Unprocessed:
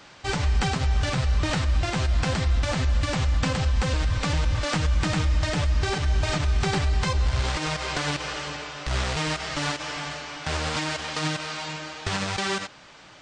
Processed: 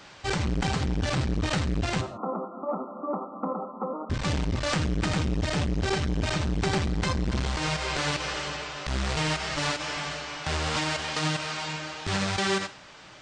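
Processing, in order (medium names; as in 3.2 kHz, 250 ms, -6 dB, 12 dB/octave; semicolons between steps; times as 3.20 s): 2.01–4.10 s: brick-wall FIR band-pass 190–1400 Hz; gated-style reverb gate 180 ms falling, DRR 10.5 dB; transformer saturation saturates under 280 Hz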